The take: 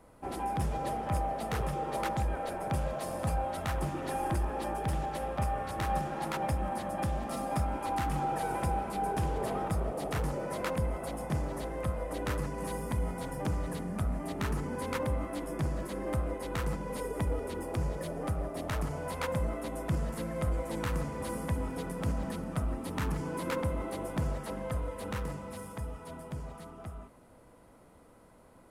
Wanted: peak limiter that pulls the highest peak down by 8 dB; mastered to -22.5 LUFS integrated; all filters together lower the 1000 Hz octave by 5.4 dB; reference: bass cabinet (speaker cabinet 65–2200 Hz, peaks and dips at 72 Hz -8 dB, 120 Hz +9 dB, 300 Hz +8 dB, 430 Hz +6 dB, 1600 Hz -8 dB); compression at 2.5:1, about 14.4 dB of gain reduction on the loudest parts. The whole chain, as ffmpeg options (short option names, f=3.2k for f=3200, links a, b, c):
-af "equalizer=f=1k:t=o:g=-7.5,acompressor=threshold=-50dB:ratio=2.5,alimiter=level_in=15.5dB:limit=-24dB:level=0:latency=1,volume=-15.5dB,highpass=f=65:w=0.5412,highpass=f=65:w=1.3066,equalizer=f=72:t=q:w=4:g=-8,equalizer=f=120:t=q:w=4:g=9,equalizer=f=300:t=q:w=4:g=8,equalizer=f=430:t=q:w=4:g=6,equalizer=f=1.6k:t=q:w=4:g=-8,lowpass=f=2.2k:w=0.5412,lowpass=f=2.2k:w=1.3066,volume=25dB"